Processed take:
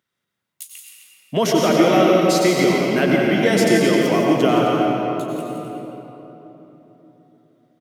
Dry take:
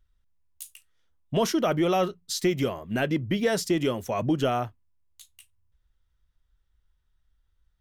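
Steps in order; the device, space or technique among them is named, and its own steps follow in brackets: stadium PA (HPF 160 Hz 24 dB/oct; bell 2100 Hz +6 dB 0.23 oct; loudspeakers at several distances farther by 58 m -9 dB, 89 m -11 dB; reverb RT60 3.7 s, pre-delay 86 ms, DRR -2 dB); gain +5 dB

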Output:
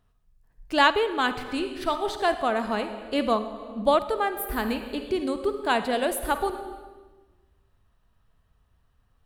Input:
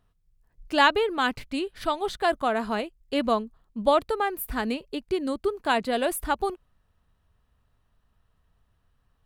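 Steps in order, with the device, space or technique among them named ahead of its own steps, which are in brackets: compressed reverb return (on a send at -3.5 dB: reverb RT60 1.2 s, pre-delay 44 ms + compressor 6:1, threshold -28 dBFS, peak gain reduction 12 dB)

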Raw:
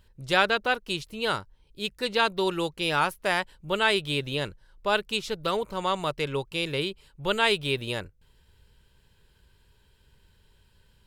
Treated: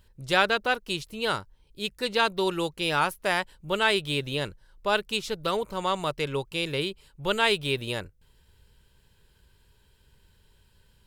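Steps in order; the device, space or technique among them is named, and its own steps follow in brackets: exciter from parts (in parallel at -6 dB: HPF 3800 Hz 6 dB/oct + soft clip -33 dBFS, distortion -5 dB + HPF 4900 Hz 6 dB/oct)

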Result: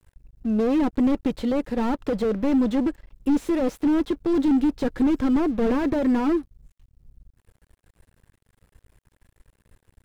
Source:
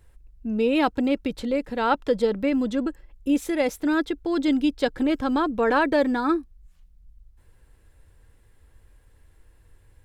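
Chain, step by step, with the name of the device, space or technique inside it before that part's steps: early transistor amplifier (crossover distortion -52.5 dBFS; slew limiter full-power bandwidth 25 Hz); gain +4.5 dB

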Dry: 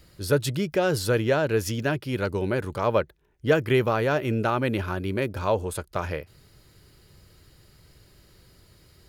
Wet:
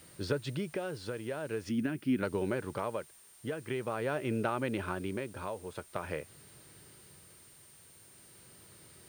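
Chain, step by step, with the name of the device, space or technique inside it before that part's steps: medium wave at night (BPF 130–3700 Hz; compressor, threshold -28 dBFS, peak gain reduction 12.5 dB; tremolo 0.45 Hz, depth 57%; whine 9000 Hz -58 dBFS; white noise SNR 24 dB); 1.69–2.23 ten-band EQ 125 Hz -6 dB, 250 Hz +11 dB, 500 Hz -12 dB, 1000 Hz -7 dB, 4000 Hz -7 dB, 8000 Hz -4 dB

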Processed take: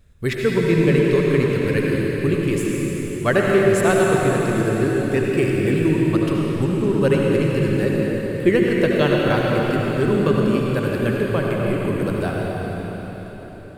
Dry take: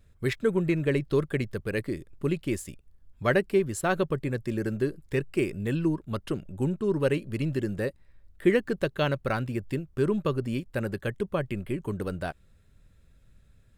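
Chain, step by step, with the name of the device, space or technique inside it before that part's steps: cathedral (reverb RT60 4.8 s, pre-delay 68 ms, DRR -3 dB); gain +5 dB

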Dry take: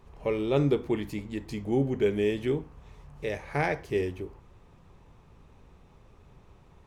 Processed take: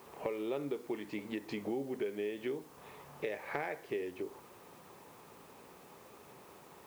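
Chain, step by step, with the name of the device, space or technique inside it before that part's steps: baby monitor (BPF 310–3200 Hz; compressor, threshold -42 dBFS, peak gain reduction 19 dB; white noise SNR 23 dB); gain +6.5 dB

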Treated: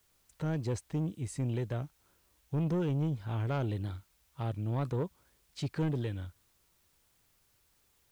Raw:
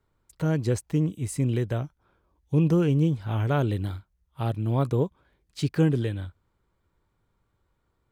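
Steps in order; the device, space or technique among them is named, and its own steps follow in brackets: compact cassette (soft clip -20 dBFS, distortion -14 dB; LPF 8300 Hz; wow and flutter; white noise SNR 36 dB); gain -6 dB

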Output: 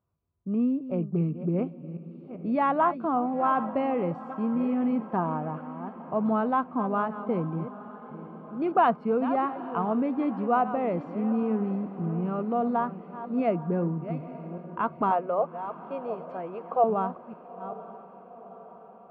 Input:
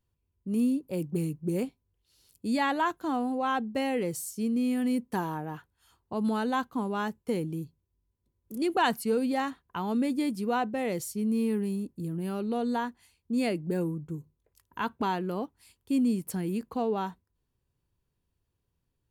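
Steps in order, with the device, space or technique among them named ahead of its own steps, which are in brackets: reverse delay 0.394 s, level -12 dB; bass cabinet (speaker cabinet 81–2200 Hz, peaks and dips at 170 Hz +5 dB, 660 Hz +10 dB, 1200 Hz +10 dB, 1800 Hz -9 dB); 15.11–16.84 resonant low shelf 360 Hz -13 dB, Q 3; diffused feedback echo 0.887 s, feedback 57%, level -16 dB

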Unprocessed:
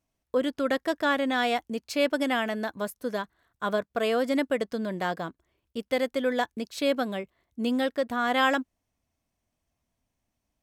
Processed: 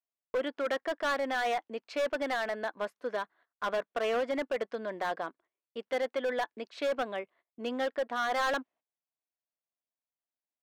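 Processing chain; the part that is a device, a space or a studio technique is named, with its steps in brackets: walkie-talkie (BPF 460–2600 Hz; hard clip -26 dBFS, distortion -9 dB; gate -59 dBFS, range -18 dB)

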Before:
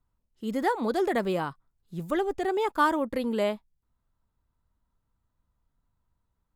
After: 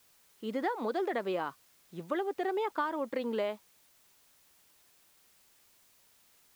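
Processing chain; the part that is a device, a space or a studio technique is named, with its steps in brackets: baby monitor (BPF 310–3900 Hz; compressor, threshold -29 dBFS, peak gain reduction 11 dB; white noise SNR 28 dB)

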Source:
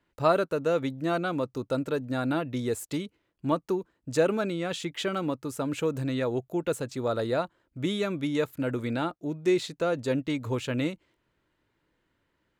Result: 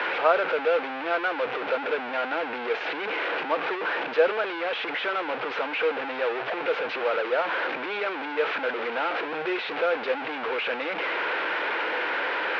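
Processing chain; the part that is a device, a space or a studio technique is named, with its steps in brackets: digital answering machine (BPF 360–3300 Hz; delta modulation 32 kbps, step -24 dBFS; speaker cabinet 450–3200 Hz, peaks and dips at 480 Hz +7 dB, 810 Hz +5 dB, 1500 Hz +7 dB, 2400 Hz +5 dB)

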